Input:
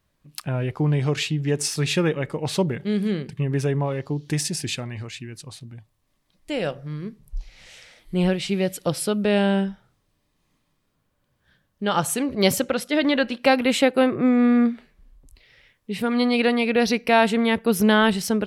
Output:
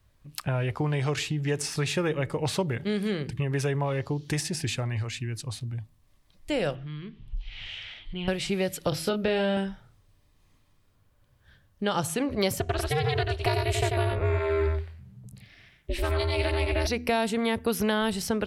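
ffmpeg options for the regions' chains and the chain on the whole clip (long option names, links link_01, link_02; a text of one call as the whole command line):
ffmpeg -i in.wav -filter_complex "[0:a]asettb=1/sr,asplit=3[link_01][link_02][link_03];[link_01]atrim=end=6.754[link_04];[link_02]atrim=start=6.75:end=8.28,asetpts=PTS-STARTPTS,afade=type=in:duration=0.004:curve=qsin,afade=type=out:start_time=1.526:duration=0.004:curve=qsin,equalizer=frequency=520:width_type=o:width=0.36:gain=-12.5,acompressor=threshold=-43dB:ratio=2:attack=3.2:release=140:knee=1:detection=peak,lowpass=frequency=3100:width_type=q:width=4.7[link_05];[link_03]atrim=start=8.276[link_06];[link_04][link_05]acrossfade=duration=0.004:curve1=hsin:curve2=qsin[link_07];[link_07][link_06]acrossfade=duration=0.004:curve1=qsin:curve2=hsin,asettb=1/sr,asplit=3[link_08][link_09][link_10];[link_08]atrim=end=8.894[link_11];[link_09]atrim=start=8.89:end=9.57,asetpts=PTS-STARTPTS,afade=type=in:duration=0.004:curve=qsin,afade=type=out:start_time=0.676:duration=0.004:curve=qsin,equalizer=frequency=9200:width_type=o:width=0.56:gain=-14.5,bandreject=frequency=1100:width=7.7,asplit=2[link_12][link_13];[link_13]adelay=27,volume=-6dB[link_14];[link_12][link_14]amix=inputs=2:normalize=0,atrim=end_sample=29988[link_15];[link_10]atrim=start=9.566[link_16];[link_11][link_15]acrossfade=duration=0.004:curve1=hsin:curve2=qsin[link_17];[link_17][link_16]acrossfade=duration=0.004:curve1=qsin:curve2=hsin,asettb=1/sr,asplit=3[link_18][link_19][link_20];[link_18]atrim=end=12.604[link_21];[link_19]atrim=start=12.6:end=16.87,asetpts=PTS-STARTPTS,afade=type=in:duration=0.004:curve=qsin,afade=type=out:start_time=4.266:duration=0.004:curve=qsin,aeval=exprs='val(0)*sin(2*PI*160*n/s)':channel_layout=same,aecho=1:1:90:0.596,atrim=end_sample=188307[link_22];[link_20]atrim=start=16.866[link_23];[link_21][link_22]acrossfade=duration=0.004:curve1=hsin:curve2=qsin[link_24];[link_24][link_23]acrossfade=duration=0.004:curve1=qsin:curve2=hsin,lowshelf=frequency=130:width_type=q:width=1.5:gain=7.5,bandreject=frequency=81.32:width_type=h:width=4,bandreject=frequency=162.64:width_type=h:width=4,bandreject=frequency=243.96:width_type=h:width=4,bandreject=frequency=325.28:width_type=h:width=4,acrossover=split=470|1100|2200|4700[link_25][link_26][link_27][link_28][link_29];[link_25]acompressor=threshold=-30dB:ratio=4[link_30];[link_26]acompressor=threshold=-33dB:ratio=4[link_31];[link_27]acompressor=threshold=-40dB:ratio=4[link_32];[link_28]acompressor=threshold=-43dB:ratio=4[link_33];[link_29]acompressor=threshold=-38dB:ratio=4[link_34];[link_30][link_31][link_32][link_33][link_34]amix=inputs=5:normalize=0,volume=2dB" out.wav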